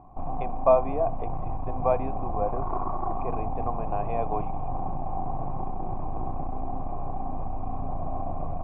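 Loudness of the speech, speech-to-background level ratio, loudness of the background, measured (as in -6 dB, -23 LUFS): -29.0 LUFS, 5.0 dB, -34.0 LUFS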